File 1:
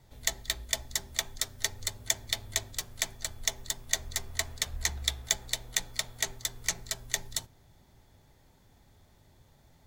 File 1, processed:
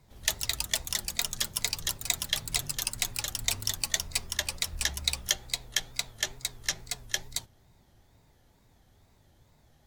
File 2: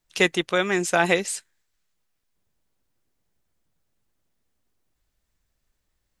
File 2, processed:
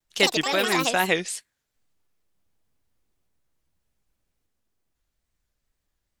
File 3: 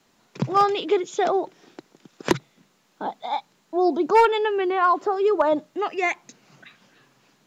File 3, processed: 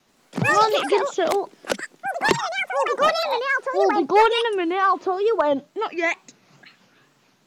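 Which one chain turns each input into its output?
dynamic bell 3.4 kHz, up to +4 dB, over -40 dBFS, Q 1.1; wow and flutter 150 cents; ever faster or slower copies 83 ms, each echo +6 st, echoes 2; peak normalisation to -6 dBFS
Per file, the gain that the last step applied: -1.5 dB, -3.0 dB, 0.0 dB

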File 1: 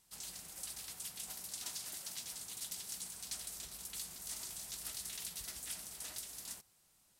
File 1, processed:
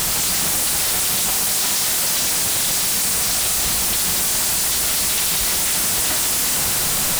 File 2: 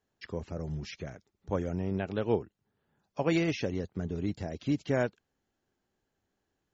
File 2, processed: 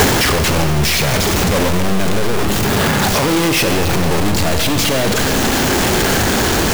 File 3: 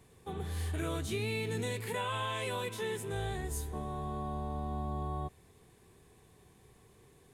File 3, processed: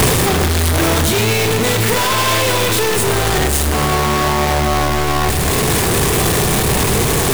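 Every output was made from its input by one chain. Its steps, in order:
one-bit comparator; Schroeder reverb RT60 2 s, combs from 27 ms, DRR 6.5 dB; loudness maximiser +34 dB; trim -7.5 dB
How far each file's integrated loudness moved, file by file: +27.0 LU, +18.5 LU, +22.5 LU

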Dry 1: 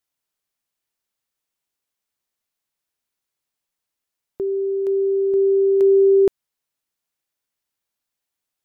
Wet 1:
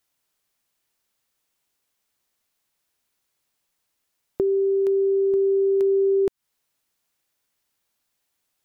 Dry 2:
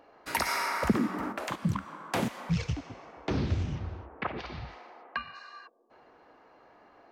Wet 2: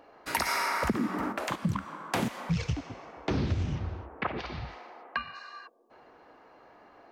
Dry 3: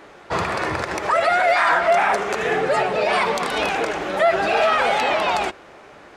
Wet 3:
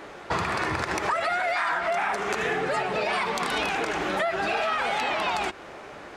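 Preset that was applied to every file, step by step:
dynamic bell 550 Hz, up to -6 dB, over -34 dBFS, Q 2; compression 6:1, threshold -26 dBFS; peak normalisation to -12 dBFS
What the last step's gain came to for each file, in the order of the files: +7.0 dB, +2.5 dB, +2.5 dB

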